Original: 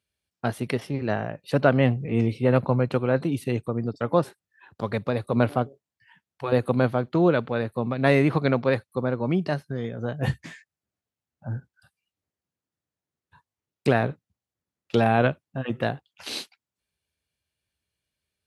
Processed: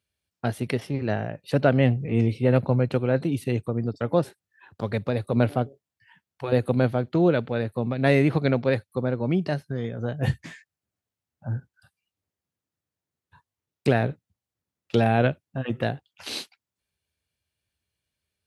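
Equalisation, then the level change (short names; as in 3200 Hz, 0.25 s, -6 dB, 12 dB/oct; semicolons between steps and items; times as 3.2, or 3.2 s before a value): dynamic EQ 1100 Hz, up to -7 dB, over -42 dBFS, Q 2.2; bell 94 Hz +3.5 dB 0.77 oct; 0.0 dB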